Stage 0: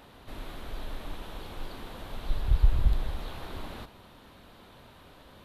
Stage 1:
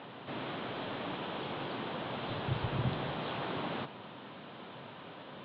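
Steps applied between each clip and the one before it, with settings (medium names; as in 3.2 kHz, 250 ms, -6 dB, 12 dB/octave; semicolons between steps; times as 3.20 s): elliptic band-pass 130–3300 Hz, stop band 40 dB; trim +6.5 dB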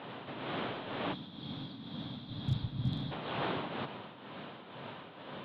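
tremolo triangle 2.1 Hz, depth 65%; hard clipper -27.5 dBFS, distortion -25 dB; time-frequency box 1.13–3.12 s, 320–3200 Hz -15 dB; trim +4 dB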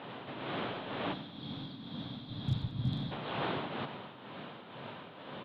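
feedback delay 91 ms, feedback 52%, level -14 dB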